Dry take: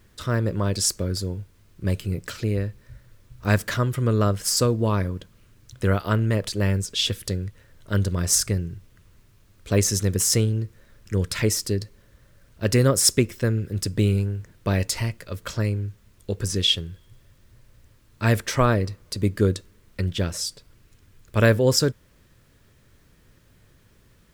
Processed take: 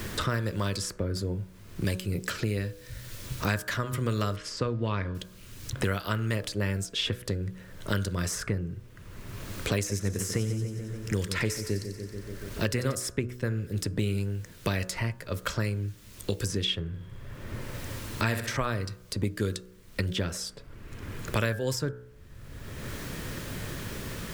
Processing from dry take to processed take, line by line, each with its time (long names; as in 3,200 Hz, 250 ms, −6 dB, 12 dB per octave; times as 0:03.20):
0:04.36–0:05.15: low-pass filter 2,500 Hz
0:09.75–0:12.95: echo with a time of its own for lows and highs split 2,200 Hz, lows 143 ms, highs 91 ms, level −10.5 dB
0:16.87–0:18.57: flutter between parallel walls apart 11 metres, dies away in 0.54 s
whole clip: hum removal 61.72 Hz, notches 28; dynamic equaliser 1,600 Hz, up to +4 dB, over −38 dBFS, Q 0.96; multiband upward and downward compressor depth 100%; level −7 dB